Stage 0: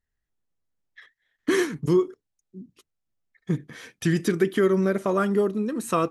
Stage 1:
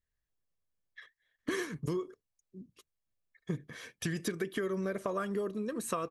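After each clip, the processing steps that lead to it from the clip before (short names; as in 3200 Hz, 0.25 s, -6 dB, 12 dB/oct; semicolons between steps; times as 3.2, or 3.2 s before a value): harmonic-percussive split percussive +4 dB; comb 1.8 ms, depth 32%; compressor, threshold -23 dBFS, peak gain reduction 9 dB; gain -7.5 dB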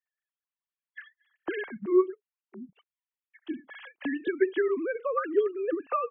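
sine-wave speech; gain +7 dB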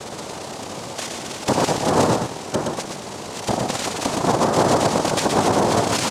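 per-bin compression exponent 0.2; noise vocoder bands 2; echo 0.12 s -4.5 dB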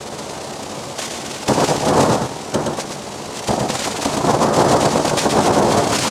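doubler 14 ms -10.5 dB; gain +3 dB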